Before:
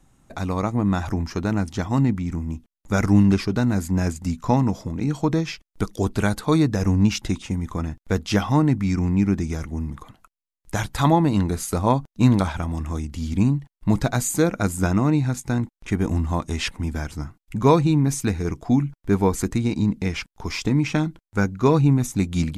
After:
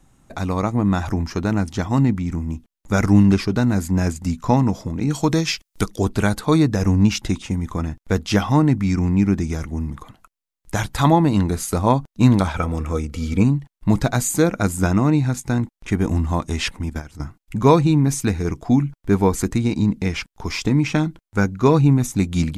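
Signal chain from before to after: 5.10–5.83 s: treble shelf 3.3 kHz -> 2.2 kHz +11.5 dB; 12.54–13.44 s: small resonant body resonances 480/1300/2300 Hz, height 14 dB; 16.79–17.20 s: level held to a coarse grid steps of 13 dB; trim +2.5 dB

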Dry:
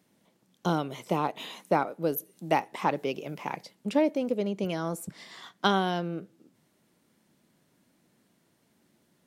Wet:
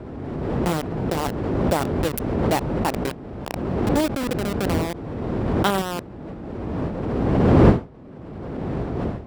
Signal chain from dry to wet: send-on-delta sampling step -21.5 dBFS; wind noise 340 Hz -30 dBFS; high-pass 42 Hz; band-stop 6.4 kHz, Q 16; swell ahead of each attack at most 25 dB/s; trim +3 dB

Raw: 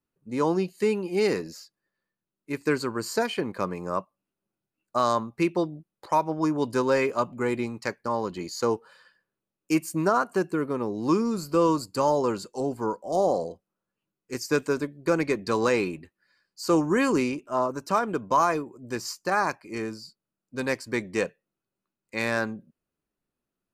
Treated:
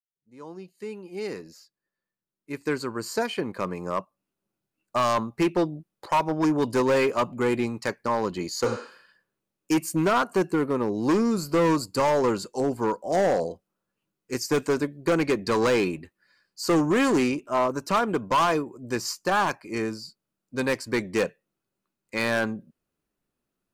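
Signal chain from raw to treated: fade-in on the opening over 5.24 s; spectral replace 8.68–9.06 s, 230–9800 Hz both; hard clipper -21 dBFS, distortion -11 dB; trim +3.5 dB

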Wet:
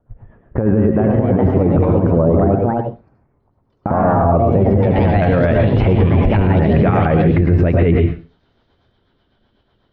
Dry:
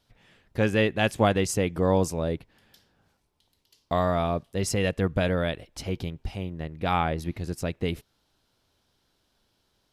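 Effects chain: low-pass 1.2 kHz 24 dB/octave, from 5.22 s 2 kHz; spectral noise reduction 14 dB; compressor with a negative ratio -28 dBFS, ratio -0.5; rotary cabinet horn 8 Hz; reverberation RT60 0.35 s, pre-delay 100 ms, DRR 3.5 dB; ever faster or slower copies 569 ms, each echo +3 st, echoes 2, each echo -6 dB; loudness maximiser +26 dB; trim -4 dB

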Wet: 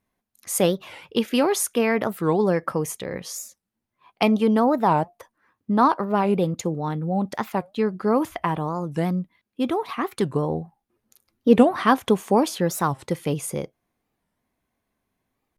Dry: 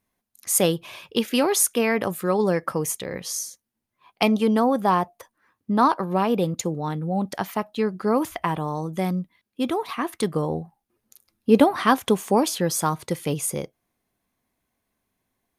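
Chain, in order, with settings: treble shelf 3.6 kHz -7 dB; warped record 45 rpm, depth 250 cents; trim +1 dB

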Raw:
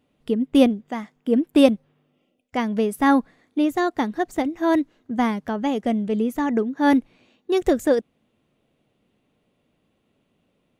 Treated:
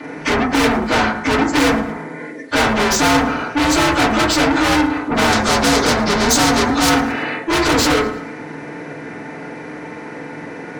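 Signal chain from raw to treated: frequency axis rescaled in octaves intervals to 85%; overdrive pedal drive 41 dB, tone 4.2 kHz, clips at -5 dBFS; 5.32–6.89 s: resonant high shelf 3.5 kHz +8 dB, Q 1.5; on a send: thinning echo 112 ms, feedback 38%, level -21 dB; on the sum: FDN reverb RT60 0.33 s, low-frequency decay 1.35×, high-frequency decay 0.3×, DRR -8 dB; in parallel at -8 dB: saturation -4.5 dBFS, distortion -6 dB; on the sum: spectrum-flattening compressor 2:1; trim -16 dB

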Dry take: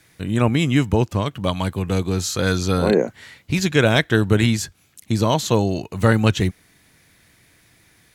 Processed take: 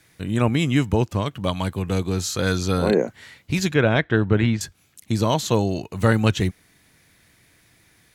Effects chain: 3.74–4.61 s: low-pass 2.5 kHz 12 dB/octave; trim -2 dB

